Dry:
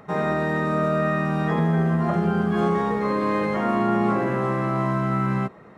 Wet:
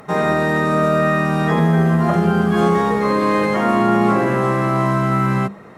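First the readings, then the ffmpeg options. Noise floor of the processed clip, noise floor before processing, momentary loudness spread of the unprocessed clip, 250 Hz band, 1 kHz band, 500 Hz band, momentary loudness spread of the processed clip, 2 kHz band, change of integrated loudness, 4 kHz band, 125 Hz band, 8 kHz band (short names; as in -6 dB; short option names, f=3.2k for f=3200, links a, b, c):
-39 dBFS, -47 dBFS, 3 LU, +5.5 dB, +6.5 dB, +6.0 dB, 3 LU, +7.0 dB, +6.0 dB, +9.5 dB, +5.5 dB, n/a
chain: -af "aemphasis=mode=production:type=cd,bandreject=f=50:t=h:w=6,bandreject=f=100:t=h:w=6,bandreject=f=150:t=h:w=6,bandreject=f=200:t=h:w=6,volume=6.5dB"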